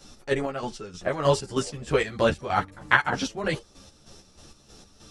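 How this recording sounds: chopped level 3.2 Hz, depth 60%, duty 45%; a shimmering, thickened sound

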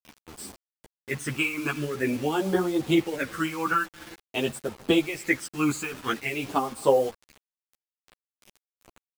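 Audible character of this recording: phasing stages 12, 0.48 Hz, lowest notch 580–2300 Hz; tremolo triangle 2.5 Hz, depth 70%; a quantiser's noise floor 8-bit, dither none; a shimmering, thickened sound

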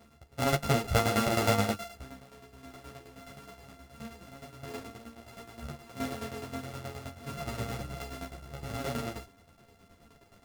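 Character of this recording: a buzz of ramps at a fixed pitch in blocks of 64 samples; tremolo saw down 9.5 Hz, depth 75%; a shimmering, thickened sound

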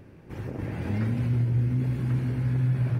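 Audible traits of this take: noise floor -49 dBFS; spectral tilt -9.5 dB/octave

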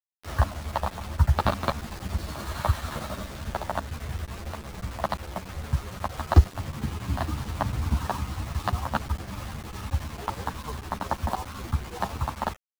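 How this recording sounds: chopped level 11 Hz, depth 60%, duty 75%; a quantiser's noise floor 6-bit, dither none; a shimmering, thickened sound

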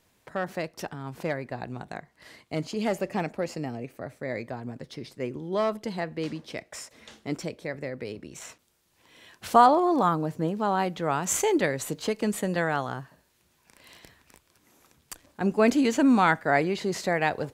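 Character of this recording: noise floor -68 dBFS; spectral tilt -5.0 dB/octave

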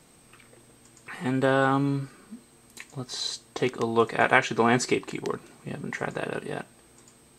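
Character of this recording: noise floor -57 dBFS; spectral tilt -5.0 dB/octave

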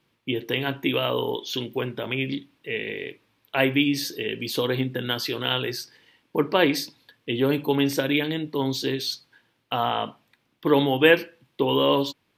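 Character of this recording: noise floor -70 dBFS; spectral tilt -3.0 dB/octave

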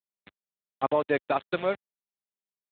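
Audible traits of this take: a quantiser's noise floor 6-bit, dither none; AMR-NB

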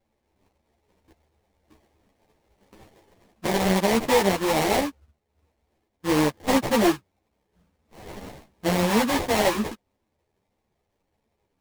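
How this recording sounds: aliases and images of a low sample rate 1.4 kHz, jitter 20%; a shimmering, thickened sound

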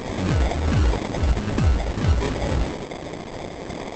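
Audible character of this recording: a quantiser's noise floor 6-bit, dither triangular; phasing stages 2, 1.5 Hz, lowest notch 250–1500 Hz; aliases and images of a low sample rate 1.4 kHz, jitter 0%; Opus

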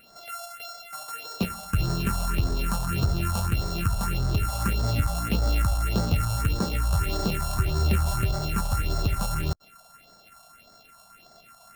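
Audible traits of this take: a buzz of ramps at a fixed pitch in blocks of 32 samples; phasing stages 4, 1.7 Hz, lowest notch 330–2600 Hz

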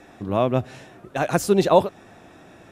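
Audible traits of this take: noise floor -49 dBFS; spectral tilt -6.0 dB/octave

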